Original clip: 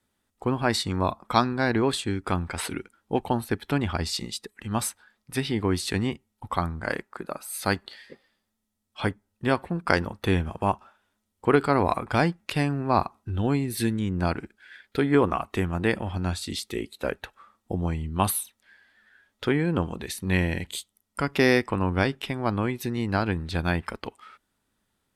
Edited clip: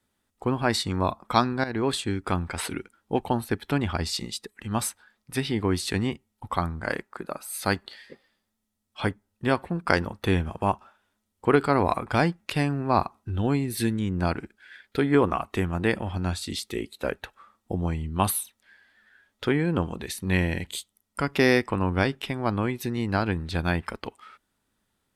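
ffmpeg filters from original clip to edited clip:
ffmpeg -i in.wav -filter_complex "[0:a]asplit=2[link_01][link_02];[link_01]atrim=end=1.64,asetpts=PTS-STARTPTS,afade=type=out:start_time=1.636:duration=0.004:curve=hsin:silence=0.237137[link_03];[link_02]atrim=start=1.64,asetpts=PTS-STARTPTS,afade=type=in:duration=0.28:silence=0.237137[link_04];[link_03][link_04]concat=n=2:v=0:a=1" out.wav

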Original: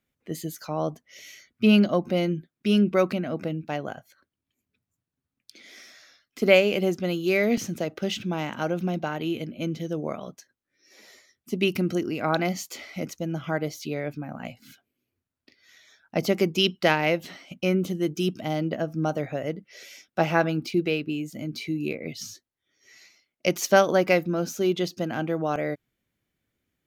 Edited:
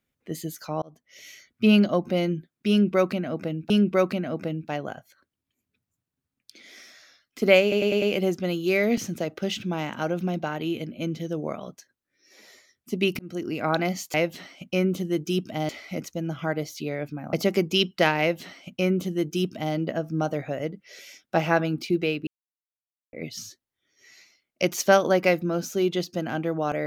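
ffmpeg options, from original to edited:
ffmpeg -i in.wav -filter_complex "[0:a]asplit=13[link_01][link_02][link_03][link_04][link_05][link_06][link_07][link_08][link_09][link_10][link_11][link_12][link_13];[link_01]atrim=end=0.82,asetpts=PTS-STARTPTS,afade=type=out:start_time=0.816:duration=0.004:curve=hsin[link_14];[link_02]atrim=start=0.82:end=3.702,asetpts=PTS-STARTPTS,afade=type=in:duration=0.44[link_15];[link_03]atrim=start=2.698:end=6.722[link_16];[link_04]atrim=start=6.618:end=6.722[link_17];[link_05]atrim=start=6.618:end=6.722[link_18];[link_06]atrim=start=6.618:end=6.722[link_19];[link_07]atrim=start=6.618:end=11.79,asetpts=PTS-STARTPTS,afade=type=out:start_time=5.168:duration=0.004:curve=hsin[link_20];[link_08]atrim=start=11.79:end=12.742,asetpts=PTS-STARTPTS,afade=type=in:duration=0.34[link_21];[link_09]atrim=start=17.038:end=18.592[link_22];[link_10]atrim=start=12.738:end=14.382[link_23];[link_11]atrim=start=16.168:end=21.11,asetpts=PTS-STARTPTS,afade=type=out:start_time=4.938:duration=0.004:curve=hsin[link_24];[link_12]atrim=start=21.11:end=21.97,asetpts=PTS-STARTPTS,volume=0[link_25];[link_13]atrim=start=21.97,asetpts=PTS-STARTPTS,afade=type=in:duration=0.004:curve=hsin[link_26];[link_14][link_15]concat=n=2:v=0:a=1[link_27];[link_27][link_16]acrossfade=duration=0.004:curve1=hsin:curve2=hsin[link_28];[link_28][link_17]acrossfade=duration=0.004:curve1=hsin:curve2=hsin[link_29];[link_29][link_18]acrossfade=duration=0.004:curve1=hsin:curve2=hsin[link_30];[link_30][link_19]acrossfade=duration=0.004:curve1=hsin:curve2=hsin[link_31];[link_20][link_21]concat=n=2:v=0:a=1[link_32];[link_31][link_32]acrossfade=duration=0.004:curve1=hsin:curve2=hsin[link_33];[link_33][link_22]acrossfade=duration=0.004:curve1=hsin:curve2=hsin[link_34];[link_34][link_23]acrossfade=duration=0.004:curve1=hsin:curve2=hsin[link_35];[link_24][link_25][link_26]concat=n=3:v=0:a=1[link_36];[link_35][link_36]acrossfade=duration=0.004:curve1=hsin:curve2=hsin" out.wav

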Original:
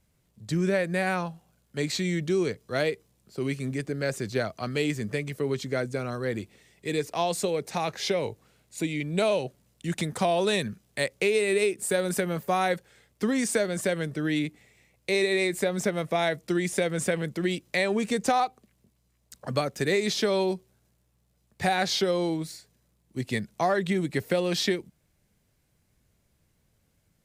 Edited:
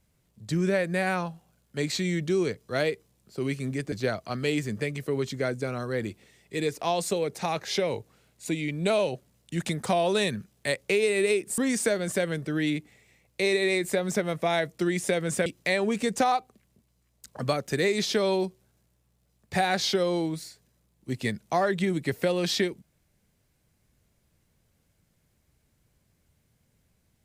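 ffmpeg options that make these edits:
ffmpeg -i in.wav -filter_complex "[0:a]asplit=4[link_01][link_02][link_03][link_04];[link_01]atrim=end=3.922[link_05];[link_02]atrim=start=4.238:end=11.902[link_06];[link_03]atrim=start=13.268:end=17.152[link_07];[link_04]atrim=start=17.538[link_08];[link_05][link_06]acrossfade=duration=0.004:curve1=hsin:curve2=hsin[link_09];[link_09][link_07]acrossfade=duration=0.004:curve1=hsin:curve2=hsin[link_10];[link_10][link_08]acrossfade=duration=0.004:curve1=hsin:curve2=hsin" out.wav

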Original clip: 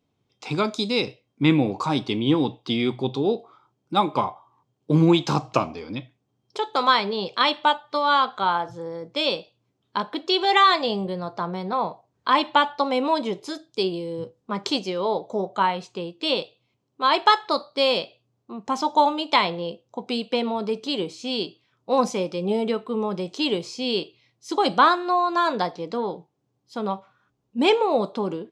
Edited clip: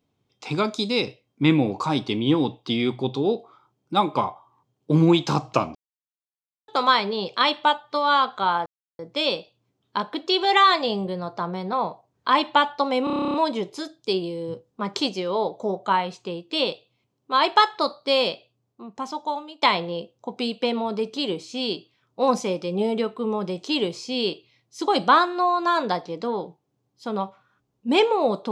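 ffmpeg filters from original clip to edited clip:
ffmpeg -i in.wav -filter_complex "[0:a]asplit=16[link_01][link_02][link_03][link_04][link_05][link_06][link_07][link_08][link_09][link_10][link_11][link_12][link_13][link_14][link_15][link_16];[link_01]atrim=end=5.75,asetpts=PTS-STARTPTS,afade=type=out:start_time=5.746:duration=0.004:curve=hsin[link_17];[link_02]atrim=start=5.75:end=6.68,asetpts=PTS-STARTPTS,volume=0[link_18];[link_03]atrim=start=6.68:end=8.66,asetpts=PTS-STARTPTS,afade=type=in:duration=0.004:curve=hsin,afade=type=out:start_time=1.976:duration=0.004:curve=hsin[link_19];[link_04]atrim=start=8.66:end=8.99,asetpts=PTS-STARTPTS,volume=0[link_20];[link_05]atrim=start=8.99:end=13.072,asetpts=PTS-STARTPTS,afade=type=in:duration=0.004:curve=hsin[link_21];[link_06]atrim=start=13.038:end=13.072[link_22];[link_07]atrim=start=13.038:end=13.072[link_23];[link_08]atrim=start=13.038:end=13.072[link_24];[link_09]atrim=start=13.038:end=13.072[link_25];[link_10]atrim=start=13.038:end=13.072[link_26];[link_11]atrim=start=13.038:end=13.072[link_27];[link_12]atrim=start=13.038:end=13.072[link_28];[link_13]atrim=start=13.038:end=13.072[link_29];[link_14]atrim=start=13.038:end=13.072[link_30];[link_15]atrim=start=13.038:end=19.32,asetpts=PTS-STARTPTS,afade=type=out:start_time=4.922:duration=1.36:silence=0.133352[link_31];[link_16]atrim=start=19.32,asetpts=PTS-STARTPTS,afade=type=in:duration=0.004:curve=hsin:silence=0.133352[link_32];[link_17][link_18][link_19][link_20][link_21]concat=n=5:v=0:a=1[link_33];[link_33][link_22]acrossfade=duration=0.004:curve1=hsin:curve2=hsin[link_34];[link_34][link_23]acrossfade=duration=0.004:curve1=hsin:curve2=hsin[link_35];[link_35][link_24]acrossfade=duration=0.004:curve1=hsin:curve2=hsin[link_36];[link_36][link_25]acrossfade=duration=0.004:curve1=hsin:curve2=hsin[link_37];[link_37][link_26]acrossfade=duration=0.004:curve1=hsin:curve2=hsin[link_38];[link_38][link_27]acrossfade=duration=0.004:curve1=hsin:curve2=hsin[link_39];[link_39][link_28]acrossfade=duration=0.004:curve1=hsin:curve2=hsin[link_40];[link_40][link_29]acrossfade=duration=0.004:curve1=hsin:curve2=hsin[link_41];[link_41][link_30]acrossfade=duration=0.004:curve1=hsin:curve2=hsin[link_42];[link_31][link_32]concat=n=2:v=0:a=1[link_43];[link_42][link_43]acrossfade=duration=0.004:curve1=hsin:curve2=hsin" out.wav

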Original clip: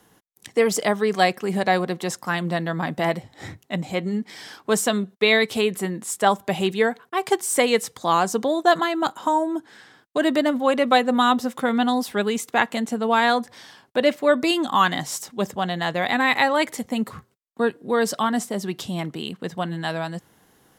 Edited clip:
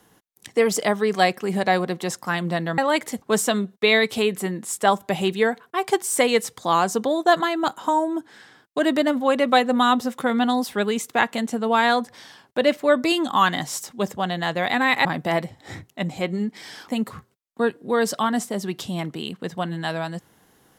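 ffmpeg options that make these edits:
ffmpeg -i in.wav -filter_complex "[0:a]asplit=5[link_01][link_02][link_03][link_04][link_05];[link_01]atrim=end=2.782[link_06];[link_02]atrim=start=16.438:end=16.882[link_07];[link_03]atrim=start=4.608:end=16.442[link_08];[link_04]atrim=start=2.778:end=4.612[link_09];[link_05]atrim=start=16.878[link_10];[link_06][link_07]acrossfade=duration=0.004:curve1=hsin:curve2=hsin[link_11];[link_11][link_08]acrossfade=duration=0.004:curve1=hsin:curve2=hsin[link_12];[link_12][link_09]acrossfade=duration=0.004:curve1=hsin:curve2=hsin[link_13];[link_13][link_10]acrossfade=duration=0.004:curve1=hsin:curve2=hsin" out.wav

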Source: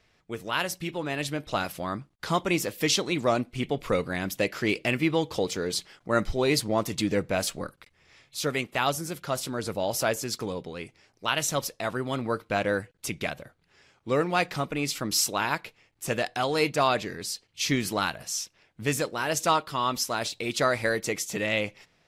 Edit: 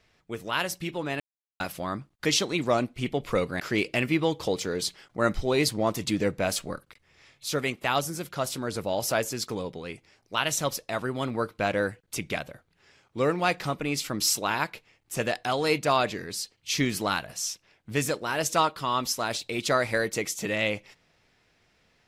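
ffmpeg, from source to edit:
ffmpeg -i in.wav -filter_complex "[0:a]asplit=5[link_01][link_02][link_03][link_04][link_05];[link_01]atrim=end=1.2,asetpts=PTS-STARTPTS,afade=type=out:start_time=1.196:duration=0.004:curve=hsin[link_06];[link_02]atrim=start=1.2:end=1.6,asetpts=PTS-STARTPTS,volume=0[link_07];[link_03]atrim=start=1.6:end=2.252,asetpts=PTS-STARTPTS,afade=type=in:duration=0.004:curve=hsin[link_08];[link_04]atrim=start=2.818:end=4.172[link_09];[link_05]atrim=start=4.508[link_10];[link_06][link_07][link_08]concat=n=3:v=0:a=1[link_11];[link_11][link_09]acrossfade=duration=0.004:curve1=hsin:curve2=hsin[link_12];[link_12][link_10]acrossfade=duration=0.004:curve1=hsin:curve2=hsin" out.wav

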